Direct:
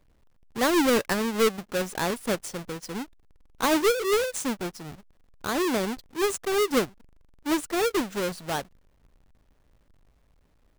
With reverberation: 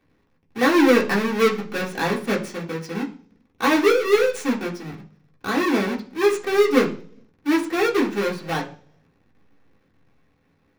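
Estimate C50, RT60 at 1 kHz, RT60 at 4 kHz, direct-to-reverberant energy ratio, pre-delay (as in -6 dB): 12.5 dB, 0.40 s, 0.55 s, -2.5 dB, 3 ms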